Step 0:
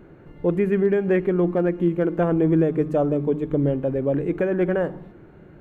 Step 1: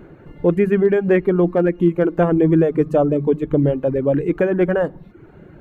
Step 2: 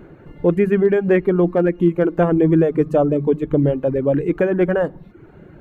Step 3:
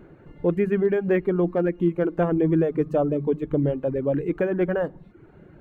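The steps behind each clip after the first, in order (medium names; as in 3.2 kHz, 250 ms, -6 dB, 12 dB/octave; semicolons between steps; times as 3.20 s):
reverb removal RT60 0.61 s; trim +5.5 dB
no audible change
decimation joined by straight lines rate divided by 2×; trim -6 dB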